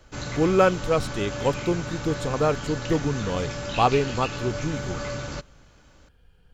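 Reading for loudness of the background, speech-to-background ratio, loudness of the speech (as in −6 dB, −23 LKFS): −32.5 LKFS, 7.0 dB, −25.5 LKFS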